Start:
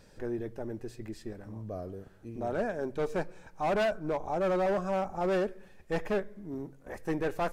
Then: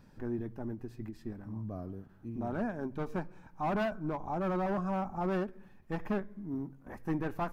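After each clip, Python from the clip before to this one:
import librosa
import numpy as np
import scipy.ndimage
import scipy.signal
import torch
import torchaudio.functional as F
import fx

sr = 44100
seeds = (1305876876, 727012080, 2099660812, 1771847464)

y = fx.graphic_eq(x, sr, hz=(125, 250, 500, 1000, 2000, 4000, 8000), db=(4, 7, -9, 5, -3, -4, -10))
y = fx.end_taper(y, sr, db_per_s=220.0)
y = F.gain(torch.from_numpy(y), -2.5).numpy()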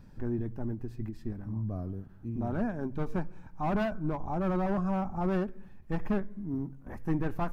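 y = fx.low_shelf(x, sr, hz=160.0, db=10.5)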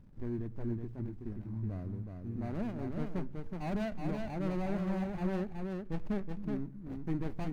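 y = scipy.ndimage.median_filter(x, 41, mode='constant')
y = y + 10.0 ** (-4.5 / 20.0) * np.pad(y, (int(372 * sr / 1000.0), 0))[:len(y)]
y = F.gain(torch.from_numpy(y), -4.5).numpy()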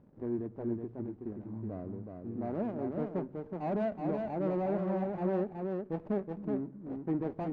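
y = fx.bandpass_q(x, sr, hz=510.0, q=1.0)
y = F.gain(torch.from_numpy(y), 7.5).numpy()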